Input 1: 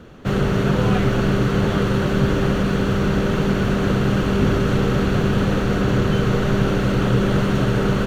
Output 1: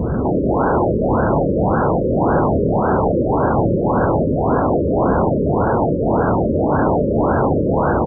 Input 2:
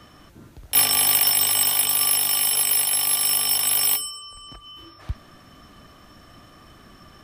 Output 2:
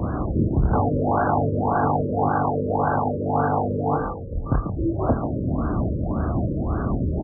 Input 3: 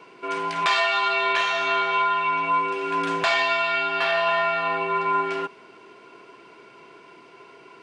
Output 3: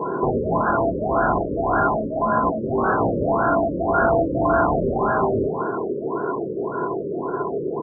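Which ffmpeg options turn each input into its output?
-filter_complex "[0:a]acontrast=89,aresample=16000,aresample=44100,lowshelf=f=99:g=8.5,acompressor=threshold=0.112:ratio=5,highshelf=f=2000:g=-11,aeval=exprs='0.224*sin(PI/2*4.47*val(0)/0.224)':c=same,highpass=51,bandreject=f=1200:w=11,asplit=2[s0][s1];[s1]adelay=27,volume=0.398[s2];[s0][s2]amix=inputs=2:normalize=0,asplit=2[s3][s4];[s4]asplit=4[s5][s6][s7][s8];[s5]adelay=140,afreqshift=48,volume=0.398[s9];[s6]adelay=280,afreqshift=96,volume=0.119[s10];[s7]adelay=420,afreqshift=144,volume=0.0359[s11];[s8]adelay=560,afreqshift=192,volume=0.0107[s12];[s9][s10][s11][s12]amix=inputs=4:normalize=0[s13];[s3][s13]amix=inputs=2:normalize=0,afftfilt=real='re*lt(b*sr/1024,590*pow(1700/590,0.5+0.5*sin(2*PI*1.8*pts/sr)))':imag='im*lt(b*sr/1024,590*pow(1700/590,0.5+0.5*sin(2*PI*1.8*pts/sr)))':win_size=1024:overlap=0.75"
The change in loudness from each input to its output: +2.5 LU, -6.0 LU, +0.5 LU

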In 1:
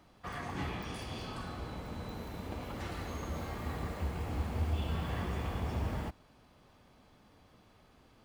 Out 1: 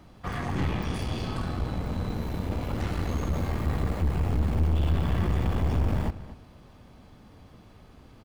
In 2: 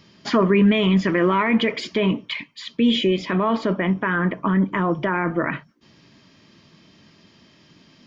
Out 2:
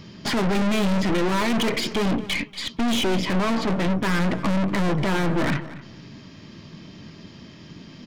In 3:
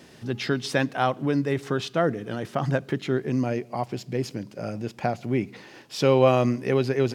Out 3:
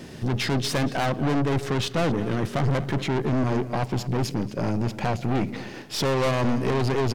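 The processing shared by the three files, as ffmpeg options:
-filter_complex "[0:a]lowshelf=f=310:g=8.5,aeval=exprs='(tanh(28.2*val(0)+0.55)-tanh(0.55))/28.2':c=same,asplit=2[s0][s1];[s1]adelay=236,lowpass=f=4100:p=1,volume=0.178,asplit=2[s2][s3];[s3]adelay=236,lowpass=f=4100:p=1,volume=0.18[s4];[s0][s2][s4]amix=inputs=3:normalize=0,volume=2.51"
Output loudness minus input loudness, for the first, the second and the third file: +9.5 LU, -2.5 LU, 0.0 LU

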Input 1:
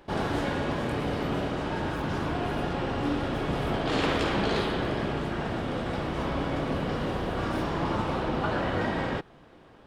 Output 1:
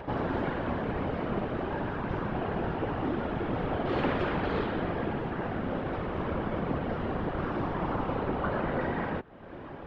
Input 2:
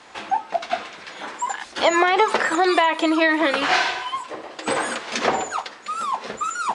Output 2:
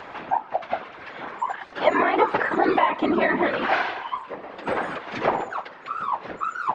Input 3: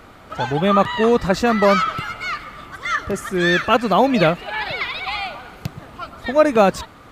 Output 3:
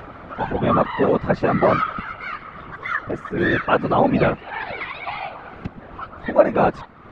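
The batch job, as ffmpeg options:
-af "acompressor=mode=upward:threshold=0.0447:ratio=2.5,afftfilt=real='hypot(re,im)*cos(2*PI*random(0))':imag='hypot(re,im)*sin(2*PI*random(1))':win_size=512:overlap=0.75,lowpass=2100,volume=1.58"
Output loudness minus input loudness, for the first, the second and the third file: -2.5 LU, -3.0 LU, -2.5 LU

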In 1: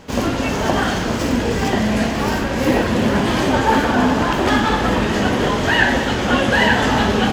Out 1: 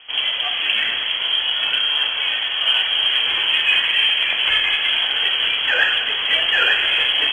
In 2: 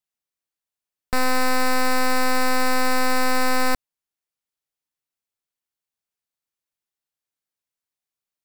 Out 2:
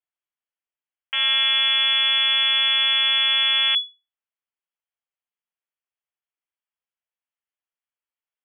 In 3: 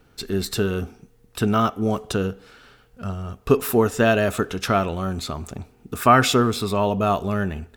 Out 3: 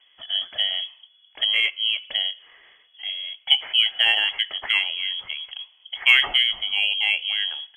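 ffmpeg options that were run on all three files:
-af "lowpass=f=2900:t=q:w=0.5098,lowpass=f=2900:t=q:w=0.6013,lowpass=f=2900:t=q:w=0.9,lowpass=f=2900:t=q:w=2.563,afreqshift=-3400,aeval=exprs='0.944*(cos(1*acos(clip(val(0)/0.944,-1,1)))-cos(1*PI/2))+0.0473*(cos(3*acos(clip(val(0)/0.944,-1,1)))-cos(3*PI/2))+0.0299*(cos(5*acos(clip(val(0)/0.944,-1,1)))-cos(5*PI/2))+0.0168*(cos(7*acos(clip(val(0)/0.944,-1,1)))-cos(7*PI/2))':c=same,equalizer=f=180:t=o:w=1.5:g=-7,volume=0.891"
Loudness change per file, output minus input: +1.0 LU, +5.5 LU, +1.0 LU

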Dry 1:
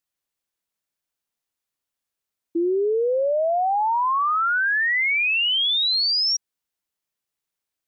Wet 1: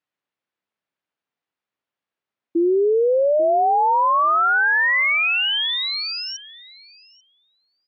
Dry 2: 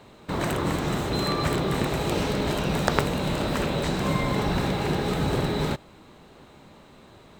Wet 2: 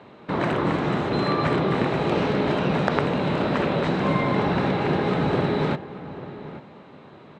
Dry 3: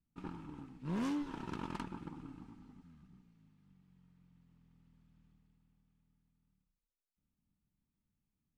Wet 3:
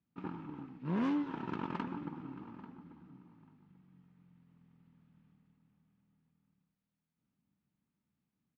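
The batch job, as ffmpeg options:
-filter_complex "[0:a]highpass=130,lowpass=2700,asplit=2[s0][s1];[s1]adelay=840,lowpass=f=2000:p=1,volume=0.2,asplit=2[s2][s3];[s3]adelay=840,lowpass=f=2000:p=1,volume=0.18[s4];[s0][s2][s4]amix=inputs=3:normalize=0,alimiter=level_in=2.11:limit=0.891:release=50:level=0:latency=1,volume=0.75"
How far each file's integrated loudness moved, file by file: +2.0 LU, +2.5 LU, +3.5 LU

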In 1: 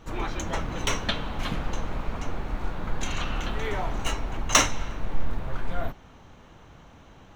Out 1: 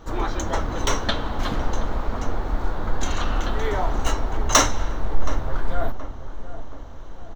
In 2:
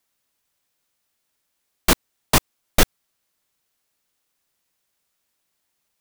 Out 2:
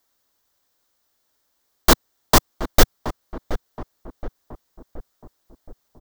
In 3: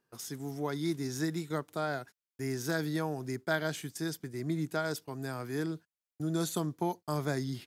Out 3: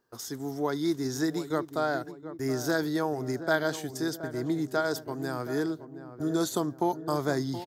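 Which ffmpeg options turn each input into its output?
-filter_complex "[0:a]equalizer=f=160:t=o:w=0.67:g=-9,equalizer=f=2500:t=o:w=0.67:g=-10,equalizer=f=10000:t=o:w=0.67:g=-8,acontrast=63,asplit=2[s0][s1];[s1]adelay=723,lowpass=f=1100:p=1,volume=0.266,asplit=2[s2][s3];[s3]adelay=723,lowpass=f=1100:p=1,volume=0.54,asplit=2[s4][s5];[s5]adelay=723,lowpass=f=1100:p=1,volume=0.54,asplit=2[s6][s7];[s7]adelay=723,lowpass=f=1100:p=1,volume=0.54,asplit=2[s8][s9];[s9]adelay=723,lowpass=f=1100:p=1,volume=0.54,asplit=2[s10][s11];[s11]adelay=723,lowpass=f=1100:p=1,volume=0.54[s12];[s0][s2][s4][s6][s8][s10][s12]amix=inputs=7:normalize=0"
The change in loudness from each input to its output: +4.0 LU, +0.5 LU, +4.5 LU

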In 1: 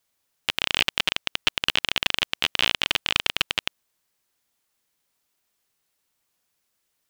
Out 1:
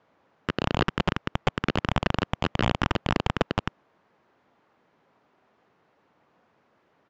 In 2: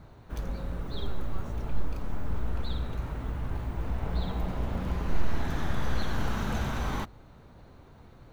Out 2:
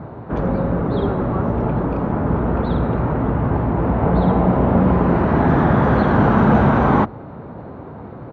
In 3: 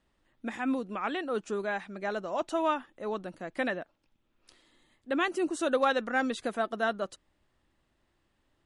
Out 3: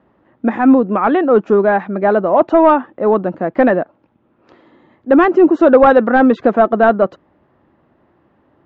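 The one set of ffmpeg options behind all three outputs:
-af "highpass=130,aresample=16000,aeval=exprs='0.75*sin(PI/2*7.08*val(0)/0.75)':c=same,aresample=44100,lowpass=1100,volume=1.12"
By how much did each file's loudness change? -4.5 LU, +17.0 LU, +19.0 LU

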